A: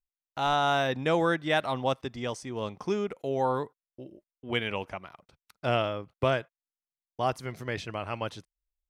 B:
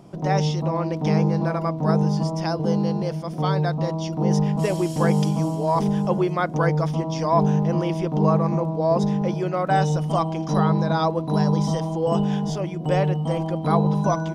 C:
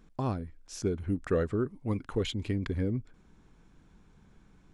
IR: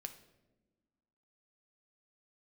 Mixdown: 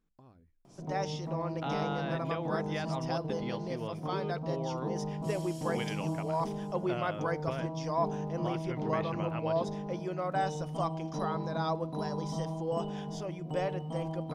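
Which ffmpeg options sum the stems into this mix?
-filter_complex "[0:a]lowpass=f=3900:w=0.5412,lowpass=f=3900:w=1.3066,acompressor=threshold=0.0282:ratio=6,adelay=1250,volume=0.668[s0];[1:a]adelay=650,volume=0.251,asplit=2[s1][s2];[s2]volume=0.355[s3];[2:a]acompressor=threshold=0.01:ratio=2,volume=0.106[s4];[3:a]atrim=start_sample=2205[s5];[s3][s5]afir=irnorm=-1:irlink=0[s6];[s0][s1][s4][s6]amix=inputs=4:normalize=0,bandreject=f=50:t=h:w=6,bandreject=f=100:t=h:w=6,bandreject=f=150:t=h:w=6,bandreject=f=200:t=h:w=6"

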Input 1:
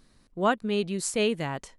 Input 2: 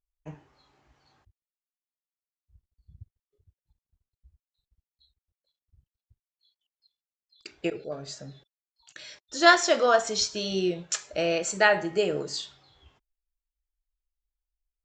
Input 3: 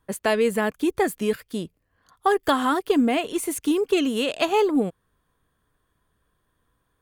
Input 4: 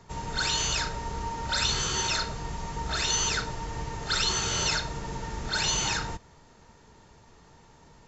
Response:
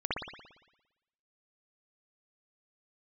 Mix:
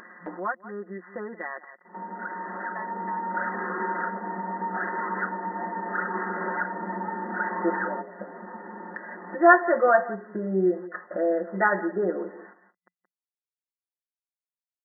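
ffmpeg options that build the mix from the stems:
-filter_complex "[0:a]bandpass=f=2600:t=q:w=0.8:csg=0,volume=0.75,asplit=3[s0][s1][s2];[s1]volume=0.106[s3];[1:a]agate=range=0.0224:threshold=0.00447:ratio=3:detection=peak,acrusher=bits=7:mix=0:aa=0.5,volume=0.891,asplit=2[s4][s5];[s5]volume=0.126[s6];[2:a]highpass=1100,adelay=2500,volume=0.188[s7];[3:a]adelay=1850,volume=1.06[s8];[s2]apad=whole_len=442051[s9];[s8][s9]sidechaincompress=threshold=0.00316:ratio=20:attack=6:release=1340[s10];[s3][s6]amix=inputs=2:normalize=0,aecho=0:1:175:1[s11];[s0][s4][s7][s10][s11]amix=inputs=5:normalize=0,aecho=1:1:5.6:0.96,afftfilt=real='re*between(b*sr/4096,180,2000)':imag='im*between(b*sr/4096,180,2000)':win_size=4096:overlap=0.75,acompressor=mode=upward:threshold=0.0501:ratio=2.5"

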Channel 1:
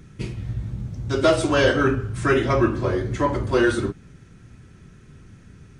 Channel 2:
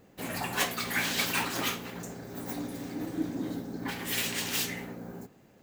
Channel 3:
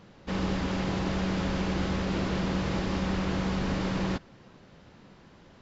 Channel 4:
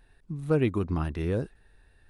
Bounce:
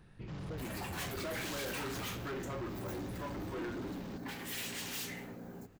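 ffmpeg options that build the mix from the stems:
-filter_complex "[0:a]lowpass=2400,volume=0.168[s0];[1:a]adelay=400,volume=0.562[s1];[2:a]volume=0.168[s2];[3:a]acompressor=threshold=0.00891:ratio=2.5,volume=0.668[s3];[s0][s1][s2][s3]amix=inputs=4:normalize=0,asoftclip=type=tanh:threshold=0.015"

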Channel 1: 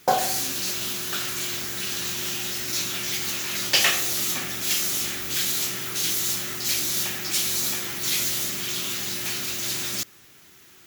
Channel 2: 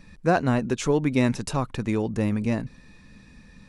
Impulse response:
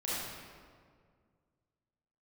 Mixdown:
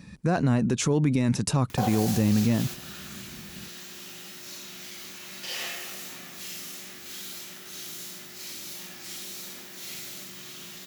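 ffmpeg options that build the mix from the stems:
-filter_complex "[0:a]acompressor=mode=upward:threshold=0.0251:ratio=2.5,adelay=1700,volume=0.299,asplit=2[s0][s1];[s1]volume=0.447[s2];[1:a]bass=f=250:g=9,treble=f=4000:g=5,volume=1.06,asplit=2[s3][s4];[s4]apad=whole_len=554269[s5];[s0][s5]sidechaingate=range=0.0224:threshold=0.0282:ratio=16:detection=peak[s6];[2:a]atrim=start_sample=2205[s7];[s2][s7]afir=irnorm=-1:irlink=0[s8];[s6][s3][s8]amix=inputs=3:normalize=0,highpass=110,alimiter=limit=0.188:level=0:latency=1:release=30"

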